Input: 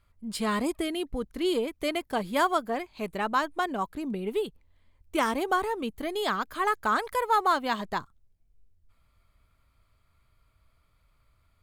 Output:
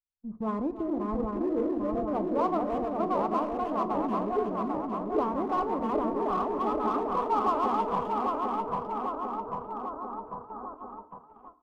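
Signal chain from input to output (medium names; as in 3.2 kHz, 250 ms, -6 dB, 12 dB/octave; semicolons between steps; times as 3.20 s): backward echo that repeats 398 ms, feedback 79%, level -2 dB; Chebyshev low-pass 1.2 kHz, order 5; gate -40 dBFS, range -41 dB; peaking EQ 130 Hz +2.5 dB 2 oct; in parallel at -7.5 dB: hard clipper -28.5 dBFS, distortion -7 dB; on the sum: speakerphone echo 310 ms, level -12 dB; FDN reverb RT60 0.57 s, low-frequency decay 1.2×, high-frequency decay 0.75×, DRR 11 dB; trim -5 dB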